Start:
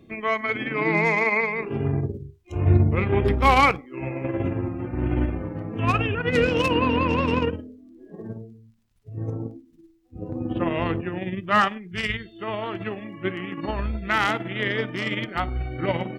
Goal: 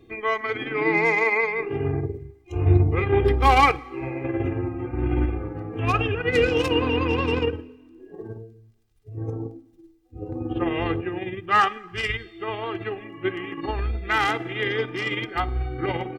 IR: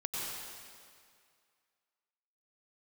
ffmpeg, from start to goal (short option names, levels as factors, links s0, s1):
-filter_complex "[0:a]aecho=1:1:2.5:0.72,asplit=2[s0][s1];[1:a]atrim=start_sample=2205,asetrate=66150,aresample=44100[s2];[s1][s2]afir=irnorm=-1:irlink=0,volume=0.0794[s3];[s0][s3]amix=inputs=2:normalize=0,volume=0.794"